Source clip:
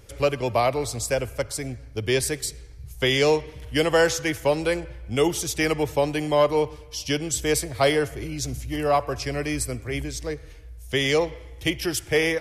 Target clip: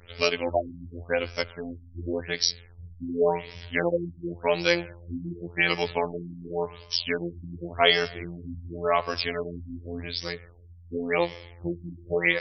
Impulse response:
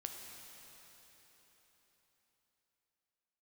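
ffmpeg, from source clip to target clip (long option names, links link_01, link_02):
-af "afftfilt=real='hypot(re,im)*cos(PI*b)':imag='0':win_size=2048:overlap=0.75,crystalizer=i=7:c=0,afftfilt=real='re*lt(b*sr/1024,300*pow(5900/300,0.5+0.5*sin(2*PI*0.9*pts/sr)))':imag='im*lt(b*sr/1024,300*pow(5900/300,0.5+0.5*sin(2*PI*0.9*pts/sr)))':win_size=1024:overlap=0.75"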